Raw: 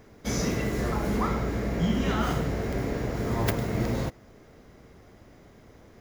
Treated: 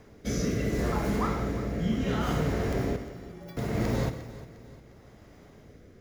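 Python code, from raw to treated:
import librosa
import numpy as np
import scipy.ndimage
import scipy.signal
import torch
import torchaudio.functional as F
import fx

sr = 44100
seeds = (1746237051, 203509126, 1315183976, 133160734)

p1 = fx.rider(x, sr, range_db=10, speed_s=0.5)
p2 = fx.stiff_resonator(p1, sr, f0_hz=170.0, decay_s=0.72, stiffness=0.03, at=(2.96, 3.57))
p3 = fx.rotary(p2, sr, hz=0.7)
p4 = fx.doubler(p3, sr, ms=27.0, db=-4.0, at=(1.76, 2.19))
p5 = p4 + fx.echo_feedback(p4, sr, ms=354, feedback_pct=44, wet_db=-16.0, dry=0)
y = fx.rev_gated(p5, sr, seeds[0], gate_ms=200, shape='flat', drr_db=9.5)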